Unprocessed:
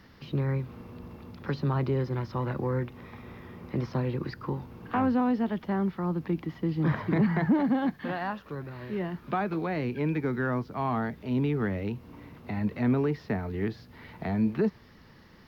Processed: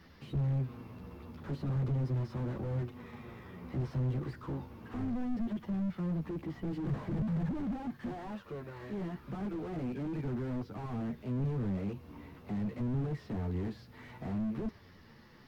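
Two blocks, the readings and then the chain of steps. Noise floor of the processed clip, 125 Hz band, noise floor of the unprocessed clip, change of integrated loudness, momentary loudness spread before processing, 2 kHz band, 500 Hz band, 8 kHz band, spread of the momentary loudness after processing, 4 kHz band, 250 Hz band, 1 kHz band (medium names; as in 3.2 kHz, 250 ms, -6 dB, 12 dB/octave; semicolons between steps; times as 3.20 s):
-57 dBFS, -4.0 dB, -54 dBFS, -7.0 dB, 15 LU, -14.5 dB, -10.5 dB, no reading, 12 LU, -9.0 dB, -7.5 dB, -13.5 dB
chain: chorus voices 2, 0.37 Hz, delay 12 ms, depth 3.9 ms; slew-rate limiter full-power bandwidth 5.4 Hz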